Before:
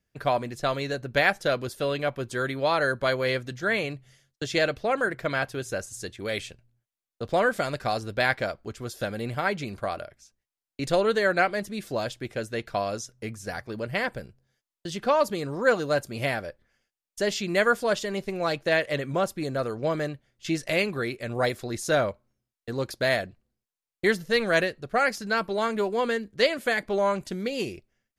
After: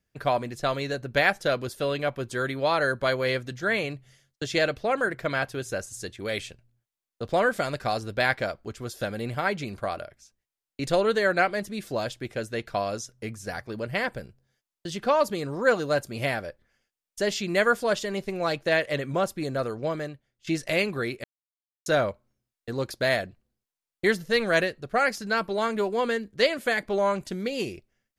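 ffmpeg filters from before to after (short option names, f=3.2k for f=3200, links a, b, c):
-filter_complex "[0:a]asplit=4[a][b][c][d];[a]atrim=end=20.47,asetpts=PTS-STARTPTS,afade=t=out:st=19.64:d=0.83:silence=0.237137[e];[b]atrim=start=20.47:end=21.24,asetpts=PTS-STARTPTS,afade=t=in:d=0.004:c=hsin:silence=0.237137,afade=t=out:st=0.766:d=0.004:c=hsin[f];[c]atrim=start=21.24:end=21.86,asetpts=PTS-STARTPTS,volume=0[g];[d]atrim=start=21.86,asetpts=PTS-STARTPTS,afade=t=in:d=0.004:c=hsin[h];[e][f][g][h]concat=n=4:v=0:a=1"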